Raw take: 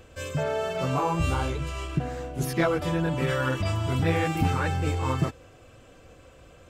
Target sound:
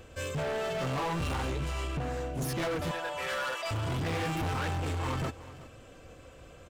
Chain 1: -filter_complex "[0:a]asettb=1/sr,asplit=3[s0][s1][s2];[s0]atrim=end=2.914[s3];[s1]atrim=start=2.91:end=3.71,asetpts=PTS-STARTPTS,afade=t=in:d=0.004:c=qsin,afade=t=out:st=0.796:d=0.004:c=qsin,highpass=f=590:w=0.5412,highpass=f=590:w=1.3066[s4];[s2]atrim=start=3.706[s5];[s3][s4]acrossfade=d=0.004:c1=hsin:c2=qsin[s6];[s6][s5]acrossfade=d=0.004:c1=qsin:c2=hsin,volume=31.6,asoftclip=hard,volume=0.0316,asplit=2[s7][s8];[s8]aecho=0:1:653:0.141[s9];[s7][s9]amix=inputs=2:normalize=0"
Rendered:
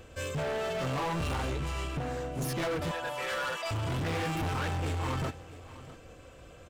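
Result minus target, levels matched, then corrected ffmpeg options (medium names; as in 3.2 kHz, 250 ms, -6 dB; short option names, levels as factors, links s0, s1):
echo 283 ms late
-filter_complex "[0:a]asettb=1/sr,asplit=3[s0][s1][s2];[s0]atrim=end=2.914[s3];[s1]atrim=start=2.91:end=3.71,asetpts=PTS-STARTPTS,afade=t=in:d=0.004:c=qsin,afade=t=out:st=0.796:d=0.004:c=qsin,highpass=f=590:w=0.5412,highpass=f=590:w=1.3066[s4];[s2]atrim=start=3.706[s5];[s3][s4]acrossfade=d=0.004:c1=hsin:c2=qsin[s6];[s6][s5]acrossfade=d=0.004:c1=qsin:c2=hsin,volume=31.6,asoftclip=hard,volume=0.0316,asplit=2[s7][s8];[s8]aecho=0:1:370:0.141[s9];[s7][s9]amix=inputs=2:normalize=0"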